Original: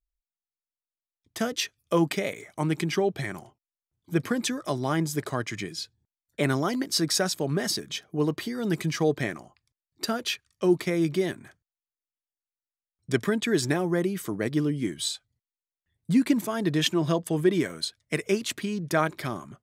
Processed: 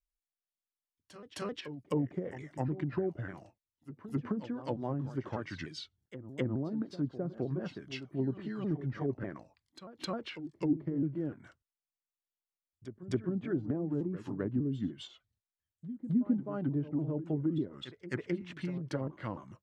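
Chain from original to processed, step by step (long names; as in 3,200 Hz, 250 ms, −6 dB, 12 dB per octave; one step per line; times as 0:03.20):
pitch shifter swept by a sawtooth −3.5 semitones, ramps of 298 ms
treble cut that deepens with the level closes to 410 Hz, closed at −22.5 dBFS
echo ahead of the sound 262 ms −13 dB
level −6 dB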